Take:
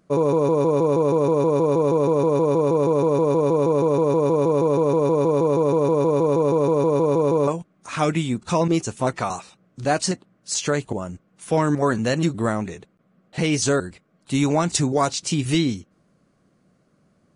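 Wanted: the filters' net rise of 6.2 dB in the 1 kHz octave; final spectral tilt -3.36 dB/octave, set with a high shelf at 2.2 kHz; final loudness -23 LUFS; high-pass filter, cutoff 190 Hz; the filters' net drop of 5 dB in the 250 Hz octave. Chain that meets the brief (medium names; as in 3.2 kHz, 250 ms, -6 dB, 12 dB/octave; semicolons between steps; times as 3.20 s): high-pass 190 Hz; peaking EQ 250 Hz -6 dB; peaking EQ 1 kHz +6 dB; treble shelf 2.2 kHz +7 dB; trim -3 dB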